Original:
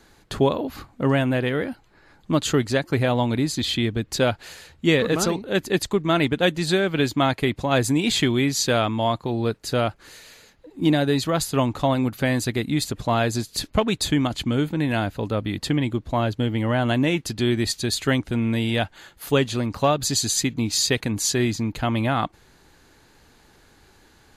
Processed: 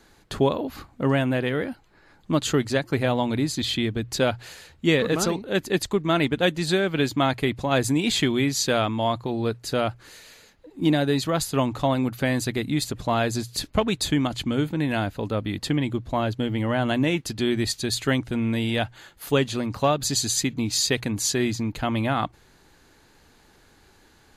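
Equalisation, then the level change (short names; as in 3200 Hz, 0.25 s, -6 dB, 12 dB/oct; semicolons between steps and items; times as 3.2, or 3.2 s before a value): notches 60/120 Hz; -1.5 dB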